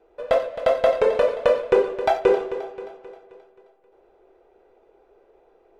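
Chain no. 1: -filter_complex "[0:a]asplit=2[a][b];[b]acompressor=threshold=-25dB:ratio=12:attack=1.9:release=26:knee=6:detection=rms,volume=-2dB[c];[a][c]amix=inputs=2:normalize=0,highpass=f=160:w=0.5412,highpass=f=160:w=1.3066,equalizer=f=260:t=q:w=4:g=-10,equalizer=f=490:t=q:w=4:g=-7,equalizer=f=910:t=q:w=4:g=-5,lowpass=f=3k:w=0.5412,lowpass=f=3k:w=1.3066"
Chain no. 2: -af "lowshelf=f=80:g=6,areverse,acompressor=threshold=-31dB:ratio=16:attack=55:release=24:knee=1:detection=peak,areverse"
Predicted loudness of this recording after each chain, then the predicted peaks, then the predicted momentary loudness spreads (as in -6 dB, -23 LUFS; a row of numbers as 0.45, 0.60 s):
-23.5, -29.0 LUFS; -8.5, -15.0 dBFS; 13, 12 LU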